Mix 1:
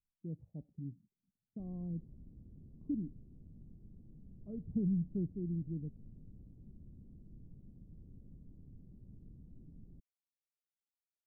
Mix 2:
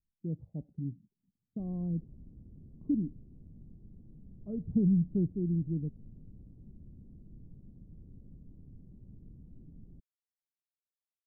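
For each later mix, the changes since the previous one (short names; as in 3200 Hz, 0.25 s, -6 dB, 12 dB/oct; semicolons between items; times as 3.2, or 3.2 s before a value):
speech +7.0 dB; background +3.0 dB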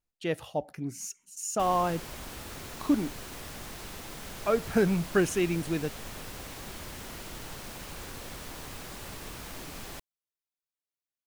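speech -6.5 dB; master: remove ladder low-pass 260 Hz, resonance 25%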